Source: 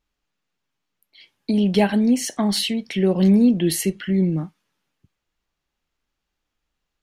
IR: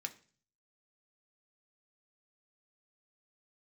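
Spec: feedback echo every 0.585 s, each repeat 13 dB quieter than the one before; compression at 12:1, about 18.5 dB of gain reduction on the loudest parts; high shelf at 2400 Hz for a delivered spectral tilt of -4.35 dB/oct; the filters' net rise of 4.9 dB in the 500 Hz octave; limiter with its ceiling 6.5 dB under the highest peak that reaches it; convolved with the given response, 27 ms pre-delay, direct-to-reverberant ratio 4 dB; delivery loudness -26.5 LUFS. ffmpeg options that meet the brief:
-filter_complex "[0:a]equalizer=f=500:t=o:g=6.5,highshelf=f=2.4k:g=6.5,acompressor=threshold=-28dB:ratio=12,alimiter=limit=-23.5dB:level=0:latency=1,aecho=1:1:585|1170|1755:0.224|0.0493|0.0108,asplit=2[a][b];[1:a]atrim=start_sample=2205,adelay=27[c];[b][c]afir=irnorm=-1:irlink=0,volume=-2.5dB[d];[a][d]amix=inputs=2:normalize=0,volume=5.5dB"

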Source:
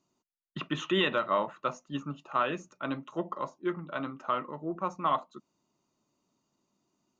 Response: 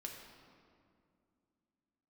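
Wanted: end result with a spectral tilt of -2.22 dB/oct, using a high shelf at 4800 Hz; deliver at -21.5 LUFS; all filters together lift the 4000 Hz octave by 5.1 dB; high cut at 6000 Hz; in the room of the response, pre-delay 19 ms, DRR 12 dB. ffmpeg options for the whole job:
-filter_complex "[0:a]lowpass=6k,equalizer=f=4k:t=o:g=9,highshelf=f=4.8k:g=-4,asplit=2[a][b];[1:a]atrim=start_sample=2205,adelay=19[c];[b][c]afir=irnorm=-1:irlink=0,volume=-9dB[d];[a][d]amix=inputs=2:normalize=0,volume=10dB"

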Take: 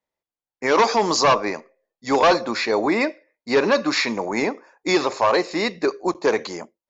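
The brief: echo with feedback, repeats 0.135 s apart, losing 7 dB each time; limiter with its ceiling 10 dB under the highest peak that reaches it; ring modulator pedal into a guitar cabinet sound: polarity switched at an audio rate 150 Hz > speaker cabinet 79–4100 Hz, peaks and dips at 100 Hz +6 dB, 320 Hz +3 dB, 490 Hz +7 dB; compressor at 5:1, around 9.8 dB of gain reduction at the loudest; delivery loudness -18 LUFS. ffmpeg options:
-af "acompressor=threshold=-24dB:ratio=5,alimiter=limit=-23dB:level=0:latency=1,aecho=1:1:135|270|405|540|675:0.447|0.201|0.0905|0.0407|0.0183,aeval=exprs='val(0)*sgn(sin(2*PI*150*n/s))':c=same,highpass=79,equalizer=f=100:t=q:w=4:g=6,equalizer=f=320:t=q:w=4:g=3,equalizer=f=490:t=q:w=4:g=7,lowpass=f=4.1k:w=0.5412,lowpass=f=4.1k:w=1.3066,volume=12dB"

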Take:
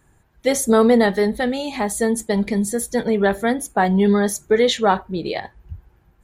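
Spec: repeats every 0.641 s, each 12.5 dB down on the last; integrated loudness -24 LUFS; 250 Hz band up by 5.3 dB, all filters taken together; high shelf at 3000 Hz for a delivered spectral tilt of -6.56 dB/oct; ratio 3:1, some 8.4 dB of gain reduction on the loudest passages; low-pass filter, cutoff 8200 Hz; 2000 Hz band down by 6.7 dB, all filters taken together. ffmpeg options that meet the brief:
-af "lowpass=8.2k,equalizer=f=250:t=o:g=6.5,equalizer=f=2k:t=o:g=-7,highshelf=f=3k:g=-3.5,acompressor=threshold=-18dB:ratio=3,aecho=1:1:641|1282|1923:0.237|0.0569|0.0137,volume=-2dB"

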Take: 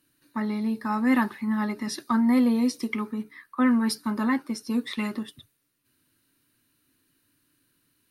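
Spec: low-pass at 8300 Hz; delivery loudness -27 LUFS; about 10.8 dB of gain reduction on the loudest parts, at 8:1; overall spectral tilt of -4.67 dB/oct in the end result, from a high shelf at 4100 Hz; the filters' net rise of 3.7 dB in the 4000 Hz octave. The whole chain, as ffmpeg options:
-af "lowpass=8.3k,equalizer=f=4k:t=o:g=8,highshelf=f=4.1k:g=-4.5,acompressor=threshold=-29dB:ratio=8,volume=6.5dB"

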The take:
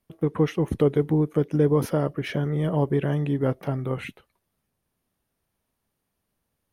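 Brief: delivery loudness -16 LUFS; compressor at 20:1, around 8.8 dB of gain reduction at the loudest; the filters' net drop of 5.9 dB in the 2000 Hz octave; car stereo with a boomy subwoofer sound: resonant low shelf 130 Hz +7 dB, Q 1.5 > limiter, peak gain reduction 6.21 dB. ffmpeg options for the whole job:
-af "equalizer=f=2k:t=o:g=-7.5,acompressor=threshold=-24dB:ratio=20,lowshelf=f=130:t=q:w=1.5:g=7,volume=16dB,alimiter=limit=-6.5dB:level=0:latency=1"

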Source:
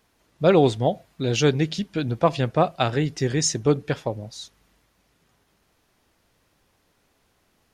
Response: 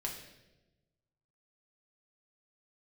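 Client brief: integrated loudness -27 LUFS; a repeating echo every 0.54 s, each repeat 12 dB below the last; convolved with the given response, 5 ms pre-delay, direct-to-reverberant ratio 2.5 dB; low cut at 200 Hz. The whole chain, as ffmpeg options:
-filter_complex "[0:a]highpass=200,aecho=1:1:540|1080|1620:0.251|0.0628|0.0157,asplit=2[a][b];[1:a]atrim=start_sample=2205,adelay=5[c];[b][c]afir=irnorm=-1:irlink=0,volume=-3.5dB[d];[a][d]amix=inputs=2:normalize=0,volume=-5.5dB"

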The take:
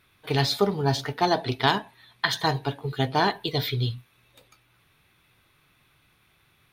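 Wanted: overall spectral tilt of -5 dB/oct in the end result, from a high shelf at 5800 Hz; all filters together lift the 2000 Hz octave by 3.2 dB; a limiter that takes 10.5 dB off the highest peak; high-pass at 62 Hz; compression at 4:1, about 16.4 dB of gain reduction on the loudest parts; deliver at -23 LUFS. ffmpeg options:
-af "highpass=62,equalizer=f=2k:t=o:g=3.5,highshelf=f=5.8k:g=4,acompressor=threshold=-36dB:ratio=4,volume=17dB,alimiter=limit=-11dB:level=0:latency=1"

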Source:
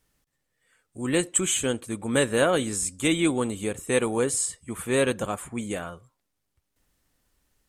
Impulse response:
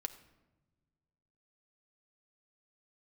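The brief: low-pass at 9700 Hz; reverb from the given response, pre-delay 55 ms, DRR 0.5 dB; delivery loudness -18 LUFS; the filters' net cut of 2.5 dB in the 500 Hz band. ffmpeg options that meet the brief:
-filter_complex "[0:a]lowpass=9.7k,equalizer=f=500:t=o:g=-3,asplit=2[a][b];[1:a]atrim=start_sample=2205,adelay=55[c];[b][c]afir=irnorm=-1:irlink=0,volume=1dB[d];[a][d]amix=inputs=2:normalize=0,volume=6dB"

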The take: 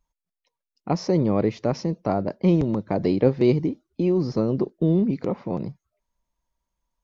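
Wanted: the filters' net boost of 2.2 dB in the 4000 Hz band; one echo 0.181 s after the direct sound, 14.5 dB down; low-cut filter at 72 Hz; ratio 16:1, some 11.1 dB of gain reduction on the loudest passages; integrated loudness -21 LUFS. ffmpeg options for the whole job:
-af "highpass=72,equalizer=f=4k:t=o:g=3,acompressor=threshold=-24dB:ratio=16,aecho=1:1:181:0.188,volume=10dB"

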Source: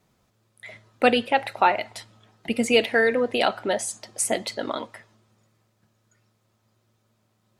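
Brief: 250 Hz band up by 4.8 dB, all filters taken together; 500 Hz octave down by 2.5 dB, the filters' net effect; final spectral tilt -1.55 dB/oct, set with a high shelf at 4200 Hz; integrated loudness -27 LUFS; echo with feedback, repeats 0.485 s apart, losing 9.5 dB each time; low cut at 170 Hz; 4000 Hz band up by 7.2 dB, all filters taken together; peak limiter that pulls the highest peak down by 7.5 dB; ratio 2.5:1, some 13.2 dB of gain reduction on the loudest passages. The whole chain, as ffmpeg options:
-af "highpass=170,equalizer=f=250:t=o:g=7,equalizer=f=500:t=o:g=-4.5,equalizer=f=4k:t=o:g=7,highshelf=f=4.2k:g=6.5,acompressor=threshold=-33dB:ratio=2.5,alimiter=limit=-22dB:level=0:latency=1,aecho=1:1:485|970|1455|1940:0.335|0.111|0.0365|0.012,volume=7.5dB"

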